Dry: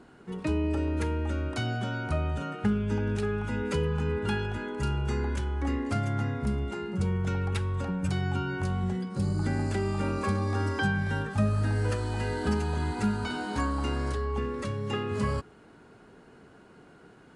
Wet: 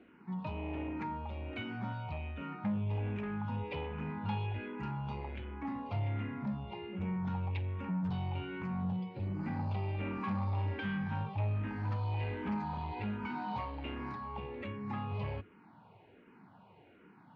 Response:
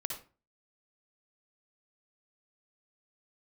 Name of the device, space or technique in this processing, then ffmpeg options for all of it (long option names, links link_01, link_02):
barber-pole phaser into a guitar amplifier: -filter_complex "[0:a]asettb=1/sr,asplit=3[link_01][link_02][link_03];[link_01]atrim=end=1.924[link_04];[link_02]atrim=start=1.92:end=2.38,asetpts=PTS-STARTPTS,afade=type=in:duration=0.004:curve=qsin,afade=type=out:start_time=0.456:duration=0.004:curve=qsin,equalizer=frequency=370:width=0.6:gain=-6.5[link_05];[link_03]atrim=start=2.376[link_06];[link_04][link_05]acrossfade=duration=0.004:curve1=hsin:curve2=qsin[link_07];[link_07][link_06]acrossfade=duration=0.004:curve1=qsin:curve2=hsin,asplit=2[link_08][link_09];[link_09]afreqshift=-1.3[link_10];[link_08][link_10]amix=inputs=2:normalize=1,asoftclip=type=tanh:threshold=-29dB,highpass=93,equalizer=frequency=100:width_type=q:width=4:gain=7,equalizer=frequency=190:width_type=q:width=4:gain=5,equalizer=frequency=410:width_type=q:width=4:gain=-4,equalizer=frequency=900:width_type=q:width=4:gain=9,equalizer=frequency=1500:width_type=q:width=4:gain=-5,equalizer=frequency=2400:width_type=q:width=4:gain=7,lowpass=frequency=3500:width=0.5412,lowpass=frequency=3500:width=1.3066,volume=-4dB"